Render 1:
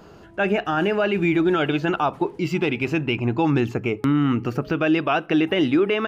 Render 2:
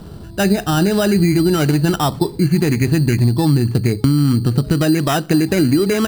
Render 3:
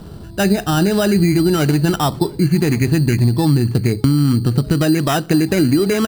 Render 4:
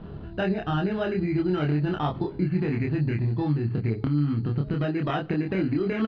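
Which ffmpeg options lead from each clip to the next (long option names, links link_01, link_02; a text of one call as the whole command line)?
ffmpeg -i in.wav -af "bass=frequency=250:gain=15,treble=frequency=4000:gain=-10,acompressor=threshold=-14dB:ratio=6,acrusher=samples=10:mix=1:aa=0.000001,volume=3.5dB" out.wav
ffmpeg -i in.wav -filter_complex "[0:a]asplit=2[link_01][link_02];[link_02]adelay=699.7,volume=-27dB,highshelf=frequency=4000:gain=-15.7[link_03];[link_01][link_03]amix=inputs=2:normalize=0" out.wav
ffmpeg -i in.wav -filter_complex "[0:a]lowpass=frequency=3000:width=0.5412,lowpass=frequency=3000:width=1.3066,acompressor=threshold=-19dB:ratio=3,asplit=2[link_01][link_02];[link_02]adelay=27,volume=-2.5dB[link_03];[link_01][link_03]amix=inputs=2:normalize=0,volume=-6.5dB" out.wav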